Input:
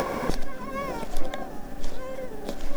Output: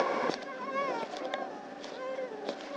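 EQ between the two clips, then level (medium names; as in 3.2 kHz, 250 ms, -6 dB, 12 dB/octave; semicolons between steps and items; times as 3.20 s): high-pass 340 Hz 12 dB/octave; low-pass 5.5 kHz 24 dB/octave; 0.0 dB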